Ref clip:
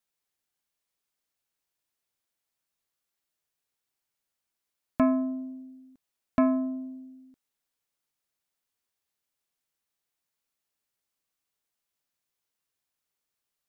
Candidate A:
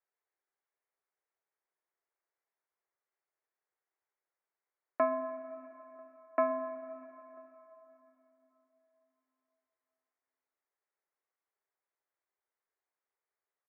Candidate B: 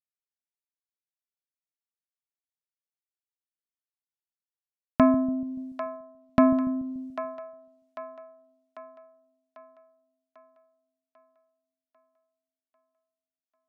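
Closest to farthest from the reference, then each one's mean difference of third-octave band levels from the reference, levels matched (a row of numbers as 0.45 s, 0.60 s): B, A; 4.0 dB, 6.0 dB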